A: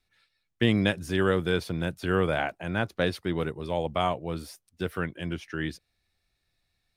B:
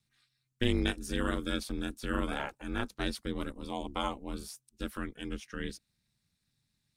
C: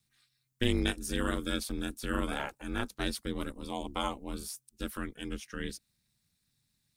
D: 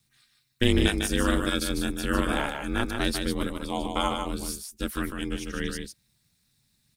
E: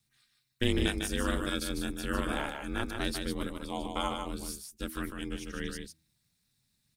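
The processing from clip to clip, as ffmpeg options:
-af "equalizer=f=500:t=o:w=1:g=-12,equalizer=f=2k:t=o:w=1:g=-5,equalizer=f=8k:t=o:w=1:g=6,aeval=exprs='val(0)*sin(2*PI*130*n/s)':c=same"
-af "highshelf=f=7.7k:g=9"
-af "aecho=1:1:150:0.531,volume=6.5dB"
-af "bandreject=f=79.54:t=h:w=4,bandreject=f=159.08:t=h:w=4,bandreject=f=238.62:t=h:w=4,bandreject=f=318.16:t=h:w=4,volume=-6dB"

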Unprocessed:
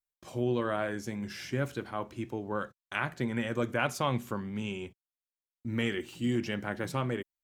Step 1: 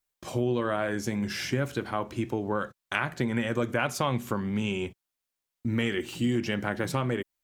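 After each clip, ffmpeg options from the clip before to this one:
-af "acompressor=threshold=-35dB:ratio=2.5,volume=9dB"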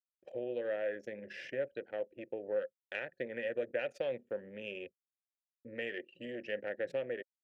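-filter_complex "[0:a]anlmdn=3.98,aeval=exprs='(tanh(5.62*val(0)+0.6)-tanh(0.6))/5.62':c=same,asplit=3[a][b][c];[a]bandpass=f=530:t=q:w=8,volume=0dB[d];[b]bandpass=f=1.84k:t=q:w=8,volume=-6dB[e];[c]bandpass=f=2.48k:t=q:w=8,volume=-9dB[f];[d][e][f]amix=inputs=3:normalize=0,volume=4dB"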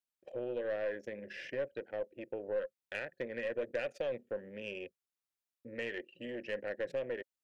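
-af "aeval=exprs='0.075*(cos(1*acos(clip(val(0)/0.075,-1,1)))-cos(1*PI/2))+0.00841*(cos(3*acos(clip(val(0)/0.075,-1,1)))-cos(3*PI/2))+0.00668*(cos(5*acos(clip(val(0)/0.075,-1,1)))-cos(5*PI/2))+0.00168*(cos(6*acos(clip(val(0)/0.075,-1,1)))-cos(6*PI/2))':c=same"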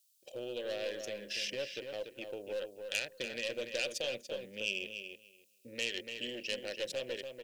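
-filter_complex "[0:a]asplit=2[a][b];[b]volume=32dB,asoftclip=hard,volume=-32dB,volume=-11dB[c];[a][c]amix=inputs=2:normalize=0,aexciter=amount=15.9:drive=1.5:freq=2.8k,asplit=2[d][e];[e]adelay=289,lowpass=f=3.5k:p=1,volume=-6.5dB,asplit=2[f][g];[g]adelay=289,lowpass=f=3.5k:p=1,volume=0.17,asplit=2[h][i];[i]adelay=289,lowpass=f=3.5k:p=1,volume=0.17[j];[d][f][h][j]amix=inputs=4:normalize=0,volume=-5dB"

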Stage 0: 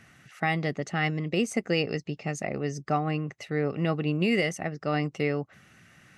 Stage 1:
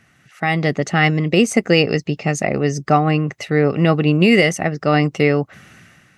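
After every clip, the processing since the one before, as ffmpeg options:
-af "dynaudnorm=f=110:g=9:m=15dB"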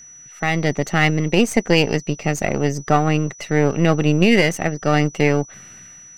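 -af "aeval=exprs='if(lt(val(0),0),0.447*val(0),val(0))':c=same,aeval=exprs='val(0)+0.01*sin(2*PI*5900*n/s)':c=same"

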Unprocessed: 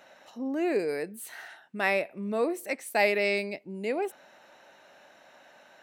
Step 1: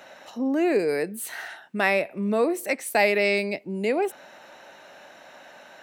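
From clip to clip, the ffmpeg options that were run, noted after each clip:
-filter_complex "[0:a]acrossover=split=170[a][b];[b]acompressor=threshold=-32dB:ratio=1.5[c];[a][c]amix=inputs=2:normalize=0,volume=8dB"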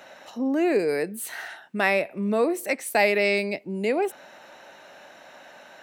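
-af anull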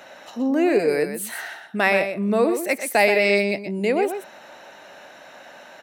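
-af "aecho=1:1:124:0.376,volume=3dB"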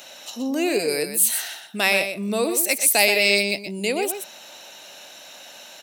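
-af "aexciter=amount=5.6:drive=4.1:freq=2.6k,volume=-4dB"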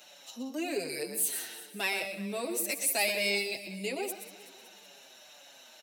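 -filter_complex "[0:a]aecho=1:1:187|374|561|748|935|1122:0.168|0.101|0.0604|0.0363|0.0218|0.0131,asplit=2[a][b];[b]adelay=6.2,afreqshift=-1.9[c];[a][c]amix=inputs=2:normalize=1,volume=-8.5dB"

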